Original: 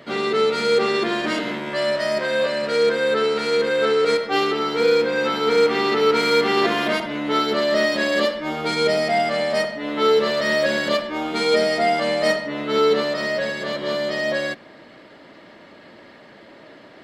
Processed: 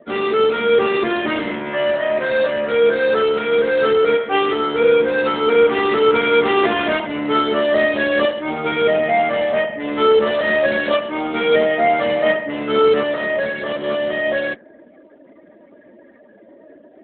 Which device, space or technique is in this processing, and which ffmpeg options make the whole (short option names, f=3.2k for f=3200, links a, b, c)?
mobile call with aggressive noise cancelling: -af "highpass=160,afftdn=nr=21:nf=-40,volume=4dB" -ar 8000 -c:a libopencore_amrnb -b:a 12200